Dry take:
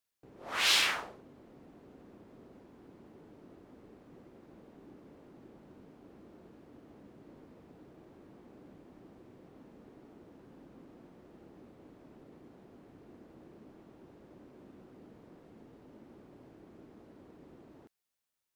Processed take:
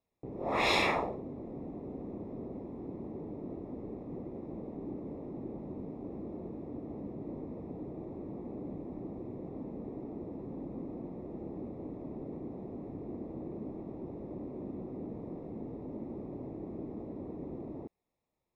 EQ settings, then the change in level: running mean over 29 samples; +14.5 dB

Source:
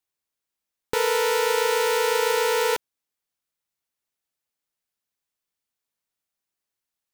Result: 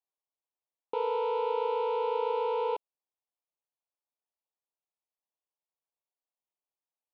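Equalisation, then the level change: BPF 610–2200 Hz; Butterworth band-stop 1700 Hz, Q 0.93; air absorption 420 m; 0.0 dB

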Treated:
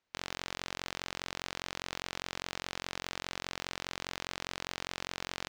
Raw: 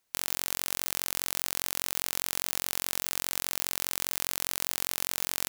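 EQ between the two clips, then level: air absorption 160 m; 0.0 dB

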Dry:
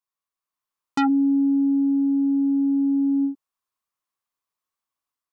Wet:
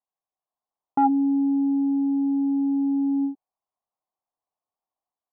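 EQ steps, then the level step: synth low-pass 750 Hz, resonance Q 4.9; -3.5 dB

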